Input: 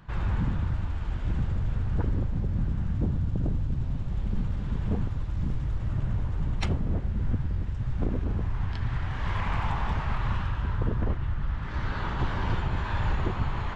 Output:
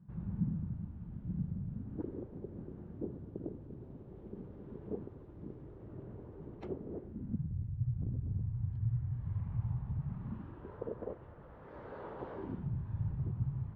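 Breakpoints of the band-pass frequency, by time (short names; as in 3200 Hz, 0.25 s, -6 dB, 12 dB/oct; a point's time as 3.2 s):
band-pass, Q 3.2
1.69 s 180 Hz
2.12 s 390 Hz
7.02 s 390 Hz
7.57 s 120 Hz
9.95 s 120 Hz
10.77 s 490 Hz
12.33 s 490 Hz
12.74 s 130 Hz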